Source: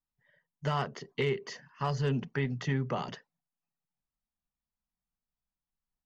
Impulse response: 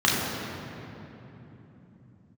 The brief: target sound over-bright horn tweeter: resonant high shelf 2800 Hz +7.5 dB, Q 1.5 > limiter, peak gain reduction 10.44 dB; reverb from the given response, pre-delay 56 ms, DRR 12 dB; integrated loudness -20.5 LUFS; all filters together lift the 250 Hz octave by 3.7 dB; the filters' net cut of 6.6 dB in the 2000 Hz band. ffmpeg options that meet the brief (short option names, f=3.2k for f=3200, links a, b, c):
-filter_complex "[0:a]equalizer=f=250:t=o:g=5,equalizer=f=2k:t=o:g=-7,asplit=2[a][b];[1:a]atrim=start_sample=2205,adelay=56[c];[b][c]afir=irnorm=-1:irlink=0,volume=-30.5dB[d];[a][d]amix=inputs=2:normalize=0,highshelf=f=2.8k:t=q:w=1.5:g=7.5,volume=17.5dB,alimiter=limit=-10dB:level=0:latency=1"